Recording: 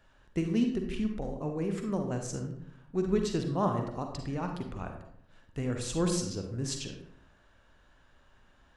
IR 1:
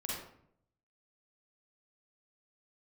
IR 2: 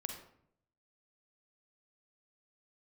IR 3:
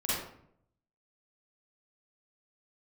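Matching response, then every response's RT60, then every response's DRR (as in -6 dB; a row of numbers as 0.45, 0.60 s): 2; 0.70, 0.70, 0.70 s; -5.0, 4.0, -9.5 dB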